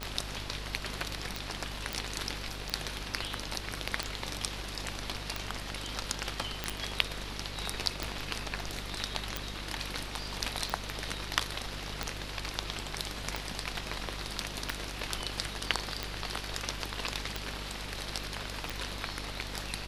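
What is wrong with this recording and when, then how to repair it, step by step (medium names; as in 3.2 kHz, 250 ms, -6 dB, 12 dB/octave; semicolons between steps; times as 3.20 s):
buzz 50 Hz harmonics 27 -43 dBFS
tick 45 rpm -16 dBFS
1.93 s: pop
6.64 s: pop -15 dBFS
9.37 s: pop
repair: de-click; de-hum 50 Hz, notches 27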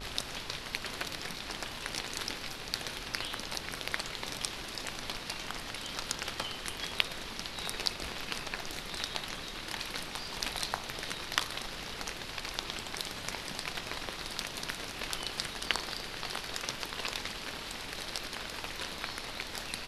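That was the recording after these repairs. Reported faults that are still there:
9.37 s: pop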